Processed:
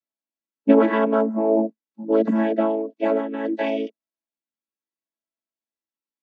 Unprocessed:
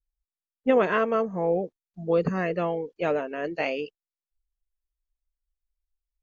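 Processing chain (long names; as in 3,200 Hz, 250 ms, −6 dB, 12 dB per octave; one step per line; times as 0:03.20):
channel vocoder with a chord as carrier major triad, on A3
level +6 dB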